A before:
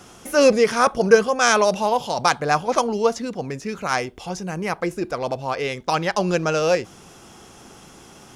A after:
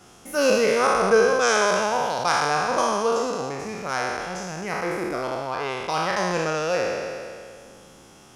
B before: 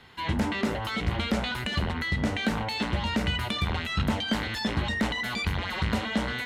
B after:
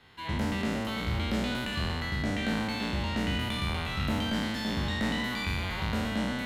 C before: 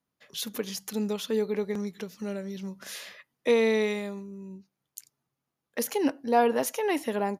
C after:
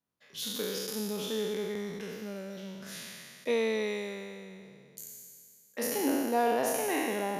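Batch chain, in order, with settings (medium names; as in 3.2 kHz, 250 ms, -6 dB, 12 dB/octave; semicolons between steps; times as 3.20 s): spectral sustain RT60 2.18 s; trim -7.5 dB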